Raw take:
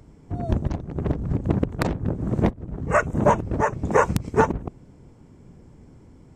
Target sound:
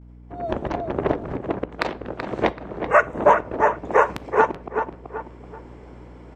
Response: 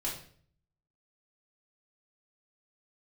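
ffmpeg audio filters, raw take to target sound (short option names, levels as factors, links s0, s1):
-filter_complex "[0:a]asettb=1/sr,asplit=3[s0][s1][s2];[s0]atrim=end=1.724[s3];[s1]atrim=start=1.72:end=2.62,asetpts=PTS-STARTPTS,afade=t=in:d=0.004:c=qsin,afade=t=out:st=0.896:d=0.004:c=qsin,equalizer=f=4500:t=o:w=2.2:g=9[s4];[s2]atrim=start=2.616[s5];[s3][s4]acrossfade=d=0.004:c1=hsin:c2=qsin[s6];[s6][s5]acrossfade=d=0.004:c1=qsin:c2=hsin,asplit=2[s7][s8];[s8]adelay=381,lowpass=f=2900:p=1,volume=0.398,asplit=2[s9][s10];[s10]adelay=381,lowpass=f=2900:p=1,volume=0.22,asplit=2[s11][s12];[s12]adelay=381,lowpass=f=2900:p=1,volume=0.22[s13];[s7][s9][s11][s13]amix=inputs=4:normalize=0,agate=range=0.0224:threshold=0.00562:ratio=3:detection=peak,acrossover=split=350 3800:gain=0.1 1 0.141[s14][s15][s16];[s14][s15][s16]amix=inputs=3:normalize=0,asplit=2[s17][s18];[1:a]atrim=start_sample=2205,adelay=16[s19];[s18][s19]afir=irnorm=-1:irlink=0,volume=0.075[s20];[s17][s20]amix=inputs=2:normalize=0,dynaudnorm=f=210:g=5:m=5.62,aeval=exprs='val(0)+0.00794*(sin(2*PI*60*n/s)+sin(2*PI*2*60*n/s)/2+sin(2*PI*3*60*n/s)/3+sin(2*PI*4*60*n/s)/4+sin(2*PI*5*60*n/s)/5)':c=same,volume=0.891"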